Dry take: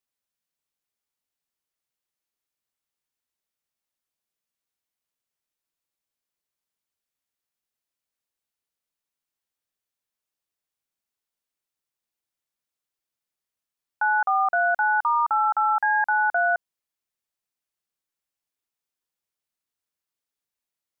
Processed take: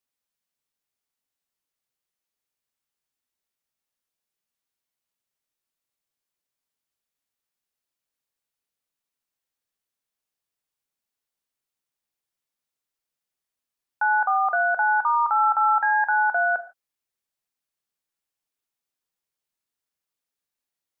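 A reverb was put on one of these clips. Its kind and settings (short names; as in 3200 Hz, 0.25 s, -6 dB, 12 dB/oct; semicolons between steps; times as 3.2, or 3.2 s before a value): non-linear reverb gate 0.18 s falling, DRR 9.5 dB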